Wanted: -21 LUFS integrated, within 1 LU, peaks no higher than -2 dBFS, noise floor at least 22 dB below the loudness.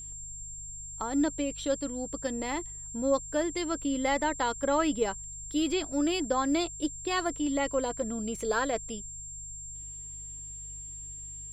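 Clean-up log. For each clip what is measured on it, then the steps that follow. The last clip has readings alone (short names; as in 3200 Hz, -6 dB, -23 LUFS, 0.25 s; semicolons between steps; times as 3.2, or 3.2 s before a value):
hum 50 Hz; harmonics up to 150 Hz; hum level -47 dBFS; steady tone 7400 Hz; tone level -40 dBFS; loudness -31.5 LUFS; peak -14.5 dBFS; loudness target -21.0 LUFS
-> de-hum 50 Hz, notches 3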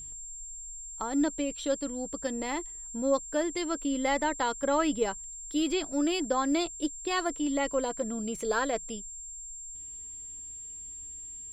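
hum none; steady tone 7400 Hz; tone level -40 dBFS
-> notch 7400 Hz, Q 30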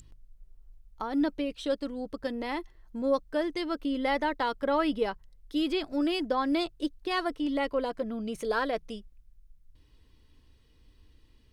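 steady tone none; loudness -30.5 LUFS; peak -15.0 dBFS; loudness target -21.0 LUFS
-> gain +9.5 dB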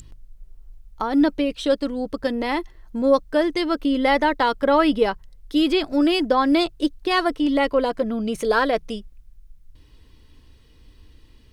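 loudness -21.0 LUFS; peak -5.5 dBFS; noise floor -52 dBFS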